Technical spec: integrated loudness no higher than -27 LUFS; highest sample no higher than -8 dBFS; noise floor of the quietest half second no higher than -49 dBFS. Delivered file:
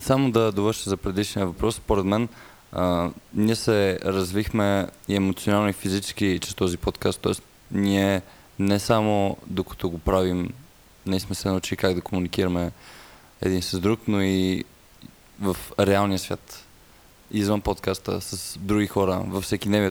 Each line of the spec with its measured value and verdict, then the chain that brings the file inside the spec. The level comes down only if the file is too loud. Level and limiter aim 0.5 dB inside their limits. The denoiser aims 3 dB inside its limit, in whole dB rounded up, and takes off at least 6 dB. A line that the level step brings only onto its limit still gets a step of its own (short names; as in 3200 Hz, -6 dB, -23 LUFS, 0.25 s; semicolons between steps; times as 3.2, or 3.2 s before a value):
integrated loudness -24.5 LUFS: fail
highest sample -5.5 dBFS: fail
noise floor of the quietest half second -52 dBFS: OK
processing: gain -3 dB